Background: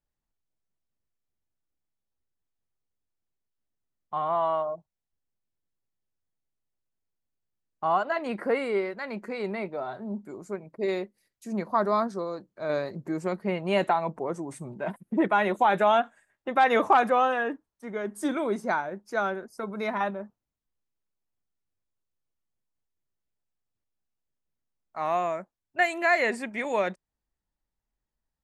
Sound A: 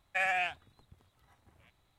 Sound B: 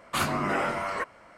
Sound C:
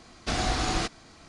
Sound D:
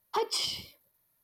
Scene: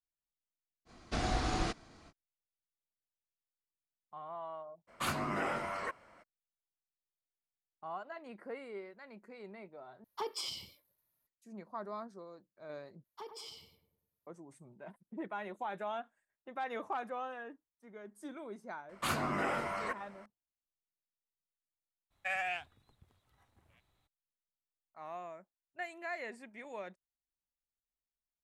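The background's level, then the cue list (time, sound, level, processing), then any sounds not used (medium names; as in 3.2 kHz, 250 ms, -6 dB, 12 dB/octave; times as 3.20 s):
background -18 dB
0.85 s: add C -5 dB, fades 0.05 s + treble shelf 2.1 kHz -6.5 dB
4.87 s: add B -8 dB, fades 0.02 s
10.04 s: replace with D -9 dB
13.04 s: replace with D -18 dB + filtered feedback delay 101 ms, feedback 53%, low-pass 1.1 kHz, level -6 dB
18.89 s: add B -7 dB + delay 491 ms -23.5 dB
22.10 s: add A -5.5 dB, fades 0.02 s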